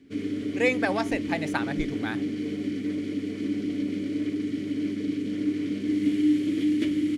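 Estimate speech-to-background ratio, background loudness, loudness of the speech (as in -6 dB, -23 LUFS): -1.0 dB, -28.5 LUFS, -29.5 LUFS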